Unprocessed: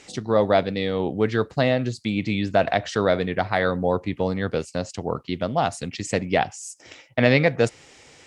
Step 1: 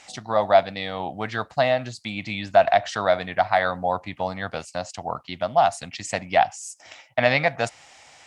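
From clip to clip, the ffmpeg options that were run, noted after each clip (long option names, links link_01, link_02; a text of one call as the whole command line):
ffmpeg -i in.wav -af "lowshelf=frequency=550:width_type=q:width=3:gain=-7.5" out.wav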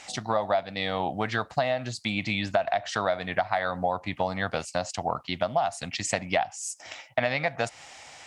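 ffmpeg -i in.wav -af "acompressor=threshold=-25dB:ratio=8,volume=3dB" out.wav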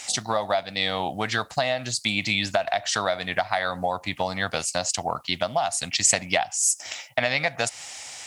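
ffmpeg -i in.wav -af "crystalizer=i=4:c=0" out.wav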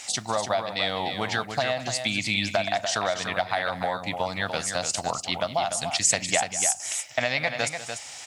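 ffmpeg -i in.wav -af "aecho=1:1:193|293:0.178|0.422,volume=-2dB" out.wav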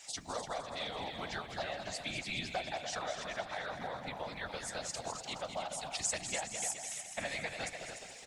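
ffmpeg -i in.wav -af "aecho=1:1:210|420|630|840|1050|1260|1470:0.355|0.202|0.115|0.0657|0.0375|0.0213|0.0122,afftfilt=real='hypot(re,im)*cos(2*PI*random(0))':imag='hypot(re,im)*sin(2*PI*random(1))':win_size=512:overlap=0.75,volume=-7.5dB" out.wav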